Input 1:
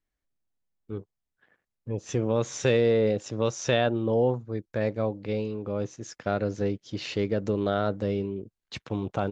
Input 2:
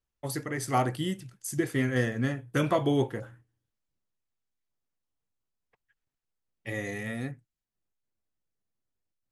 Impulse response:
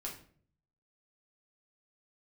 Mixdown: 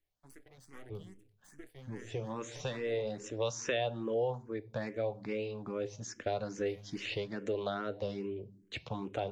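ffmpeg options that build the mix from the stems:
-filter_complex "[0:a]volume=0dB,asplit=2[link_01][link_02];[link_02]volume=-11dB[link_03];[1:a]aeval=exprs='max(val(0),0)':channel_layout=same,volume=-18dB,asplit=2[link_04][link_05];[link_05]apad=whole_len=410622[link_06];[link_01][link_06]sidechaincompress=threshold=-49dB:ratio=4:attack=29:release=518[link_07];[2:a]atrim=start_sample=2205[link_08];[link_03][link_08]afir=irnorm=-1:irlink=0[link_09];[link_07][link_04][link_09]amix=inputs=3:normalize=0,equalizer=frequency=1300:width_type=o:width=0.41:gain=-3.5,acrossover=split=500|3300[link_10][link_11][link_12];[link_10]acompressor=threshold=-37dB:ratio=4[link_13];[link_11]acompressor=threshold=-31dB:ratio=4[link_14];[link_12]acompressor=threshold=-42dB:ratio=4[link_15];[link_13][link_14][link_15]amix=inputs=3:normalize=0,asplit=2[link_16][link_17];[link_17]afreqshift=2.4[link_18];[link_16][link_18]amix=inputs=2:normalize=1"

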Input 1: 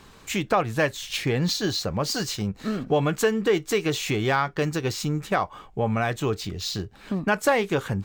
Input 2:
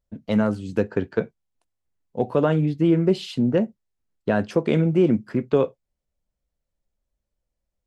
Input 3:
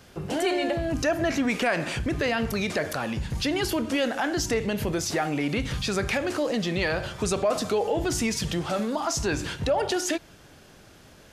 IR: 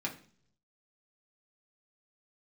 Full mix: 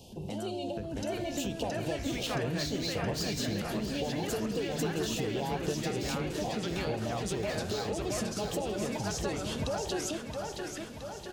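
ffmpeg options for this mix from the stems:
-filter_complex "[0:a]adelay=1100,volume=1dB,asplit=2[link_01][link_02];[link_02]volume=-19.5dB[link_03];[1:a]acrossover=split=130|3000[link_04][link_05][link_06];[link_05]acompressor=threshold=-28dB:ratio=6[link_07];[link_04][link_07][link_06]amix=inputs=3:normalize=0,volume=-13dB,asplit=3[link_08][link_09][link_10];[link_09]volume=-3dB[link_11];[2:a]volume=0.5dB,asplit=2[link_12][link_13];[link_13]volume=-15dB[link_14];[link_10]apad=whole_len=499626[link_15];[link_12][link_15]sidechaincompress=threshold=-48dB:ratio=8:attack=5.3:release=478[link_16];[link_01][link_16]amix=inputs=2:normalize=0,asuperstop=centerf=1600:order=12:qfactor=0.96,acompressor=threshold=-32dB:ratio=10,volume=0dB[link_17];[link_03][link_11][link_14]amix=inputs=3:normalize=0,aecho=0:1:671|1342|2013|2684|3355|4026|4697|5368|6039|6710:1|0.6|0.36|0.216|0.13|0.0778|0.0467|0.028|0.0168|0.0101[link_18];[link_08][link_17][link_18]amix=inputs=3:normalize=0"

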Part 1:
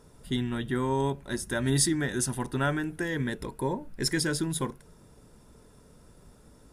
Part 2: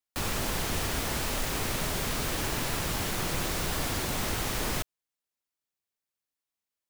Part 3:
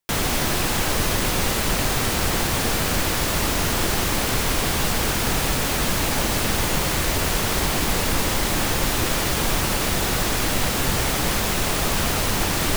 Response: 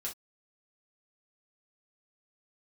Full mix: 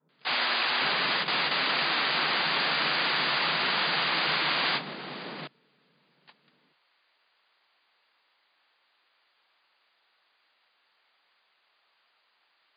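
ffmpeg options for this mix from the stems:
-filter_complex "[0:a]acompressor=threshold=-38dB:ratio=4,adynamicequalizer=threshold=0.00251:dfrequency=390:dqfactor=1.1:tfrequency=390:tqfactor=1.1:attack=5:release=100:ratio=0.375:range=3:mode=boostabove:tftype=bell,lowpass=1300,volume=-13dB,asplit=2[link_01][link_02];[1:a]alimiter=level_in=5dB:limit=-24dB:level=0:latency=1:release=17,volume=-5dB,adelay=650,volume=2dB[link_03];[2:a]highpass=1000,volume=1dB[link_04];[link_02]apad=whole_len=562791[link_05];[link_04][link_05]sidechaingate=range=-43dB:threshold=-60dB:ratio=16:detection=peak[link_06];[link_01][link_03][link_06]amix=inputs=3:normalize=0,afftfilt=real='re*between(b*sr/4096,130,4900)':imag='im*between(b*sr/4096,130,4900)':win_size=4096:overlap=0.75"

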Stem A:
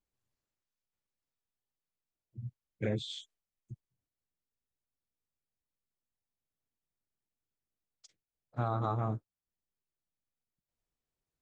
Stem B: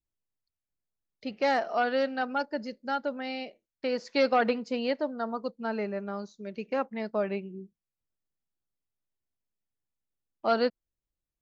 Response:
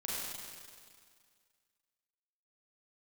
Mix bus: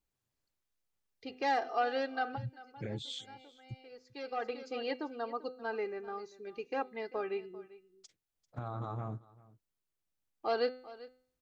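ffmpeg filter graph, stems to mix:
-filter_complex "[0:a]alimiter=level_in=7dB:limit=-24dB:level=0:latency=1:release=235,volume=-7dB,volume=1.5dB,asplit=3[link_01][link_02][link_03];[link_02]volume=-22dB[link_04];[1:a]aecho=1:1:2.5:0.79,bandreject=frequency=253.8:width_type=h:width=4,bandreject=frequency=507.6:width_type=h:width=4,bandreject=frequency=761.4:width_type=h:width=4,bandreject=frequency=1015.2:width_type=h:width=4,bandreject=frequency=1269:width_type=h:width=4,bandreject=frequency=1522.8:width_type=h:width=4,bandreject=frequency=1776.6:width_type=h:width=4,bandreject=frequency=2030.4:width_type=h:width=4,bandreject=frequency=2284.2:width_type=h:width=4,bandreject=frequency=2538:width_type=h:width=4,bandreject=frequency=2791.8:width_type=h:width=4,bandreject=frequency=3045.6:width_type=h:width=4,bandreject=frequency=3299.4:width_type=h:width=4,bandreject=frequency=3553.2:width_type=h:width=4,bandreject=frequency=3807:width_type=h:width=4,bandreject=frequency=4060.8:width_type=h:width=4,bandreject=frequency=4314.6:width_type=h:width=4,bandreject=frequency=4568.4:width_type=h:width=4,acontrast=38,volume=-12dB,asplit=2[link_05][link_06];[link_06]volume=-18.5dB[link_07];[link_03]apad=whole_len=503716[link_08];[link_05][link_08]sidechaincompress=threshold=-58dB:ratio=16:attack=5.1:release=867[link_09];[link_04][link_07]amix=inputs=2:normalize=0,aecho=0:1:393:1[link_10];[link_01][link_09][link_10]amix=inputs=3:normalize=0"

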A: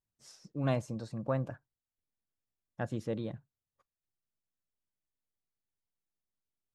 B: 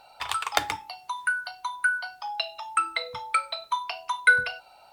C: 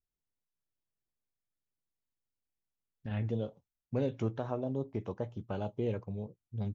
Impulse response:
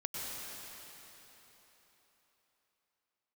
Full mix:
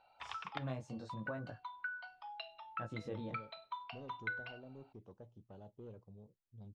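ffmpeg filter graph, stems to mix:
-filter_complex "[0:a]flanger=delay=18:depth=5.3:speed=0.71,volume=-3dB,asplit=2[link_01][link_02];[1:a]lowpass=frequency=3600:width=0.5412,lowpass=frequency=3600:width=1.3066,volume=-15dB[link_03];[2:a]equalizer=frequency=2000:width=1.6:gain=-13,asoftclip=type=tanh:threshold=-27dB,volume=-16.5dB[link_04];[link_02]apad=whole_len=217220[link_05];[link_03][link_05]sidechaincompress=threshold=-40dB:ratio=8:attack=16:release=390[link_06];[link_01][link_06]amix=inputs=2:normalize=0,acompressor=threshold=-38dB:ratio=4,volume=0dB[link_07];[link_04][link_07]amix=inputs=2:normalize=0,lowpass=7200"

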